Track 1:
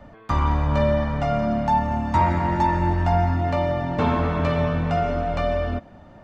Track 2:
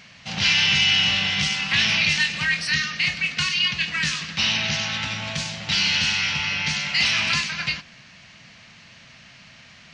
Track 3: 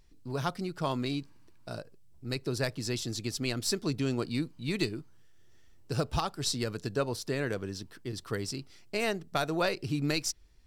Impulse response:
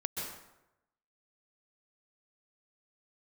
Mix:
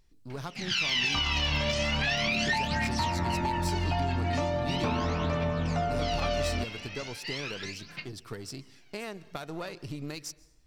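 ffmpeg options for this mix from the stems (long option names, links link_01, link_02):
-filter_complex "[0:a]acompressor=threshold=-21dB:ratio=6,adelay=850,volume=-4dB[link_01];[1:a]highpass=190,aphaser=in_gain=1:out_gain=1:delay=1.9:decay=0.74:speed=0.39:type=triangular,adelay=300,volume=-9.5dB,afade=type=out:start_time=2.78:duration=0.4:silence=0.266073[link_02];[2:a]acompressor=threshold=-32dB:ratio=5,aeval=exprs='0.0891*(cos(1*acos(clip(val(0)/0.0891,-1,1)))-cos(1*PI/2))+0.00631*(cos(6*acos(clip(val(0)/0.0891,-1,1)))-cos(6*PI/2))':channel_layout=same,volume=-3.5dB,asplit=2[link_03][link_04];[link_04]volume=-21dB[link_05];[3:a]atrim=start_sample=2205[link_06];[link_05][link_06]afir=irnorm=-1:irlink=0[link_07];[link_01][link_02][link_03][link_07]amix=inputs=4:normalize=0,alimiter=limit=-18.5dB:level=0:latency=1:release=107"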